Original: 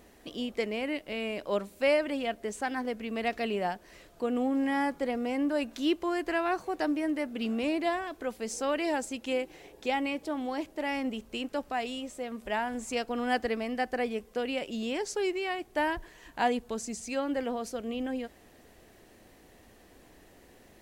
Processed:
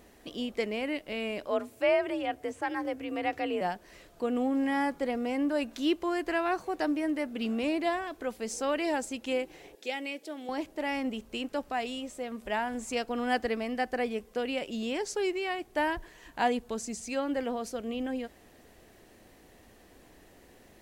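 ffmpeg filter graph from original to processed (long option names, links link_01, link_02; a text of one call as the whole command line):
ffmpeg -i in.wav -filter_complex "[0:a]asettb=1/sr,asplit=3[link_01][link_02][link_03];[link_01]atrim=end=1.474[link_04];[link_02]atrim=start=1.47:end=3.61,asetpts=PTS-STARTPTS,afade=type=in:duration=0.004:curve=qsin,afade=type=out:start_time=2.136:duration=0.004:curve=qsin,acrossover=split=3500[link_05][link_06];[link_06]acompressor=threshold=-53dB:ratio=4:attack=1:release=60[link_07];[link_05][link_07]amix=inputs=2:normalize=0,equalizer=frequency=4000:width_type=o:width=0.65:gain=-3.5,afreqshift=47[link_08];[link_03]atrim=start=3.606[link_09];[link_04][link_08]acrossfade=duration=0.004:curve1=hsin:curve2=qsin[link_10];[link_10][link_09]acrossfade=duration=0.004:curve1=qsin:curve2=hsin,asettb=1/sr,asplit=3[link_11][link_12][link_13];[link_11]atrim=end=9.754[link_14];[link_12]atrim=start=9.75:end=10.49,asetpts=PTS-STARTPTS,afade=type=in:duration=0.004:curve=qsin,afade=type=out:start_time=0.736:duration=0.004:curve=qsin,highpass=400,equalizer=frequency=1000:width=1.4:gain=-12.5[link_15];[link_13]atrim=start=10.486[link_16];[link_14][link_15]acrossfade=duration=0.004:curve1=hsin:curve2=qsin[link_17];[link_17][link_16]acrossfade=duration=0.004:curve1=qsin:curve2=hsin" out.wav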